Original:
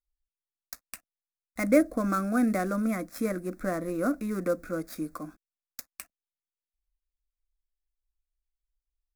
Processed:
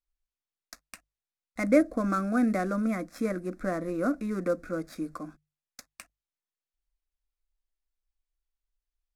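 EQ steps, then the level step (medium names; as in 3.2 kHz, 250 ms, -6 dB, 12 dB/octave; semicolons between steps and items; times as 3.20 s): distance through air 59 m; treble shelf 11 kHz +5 dB; hum notches 50/100/150 Hz; 0.0 dB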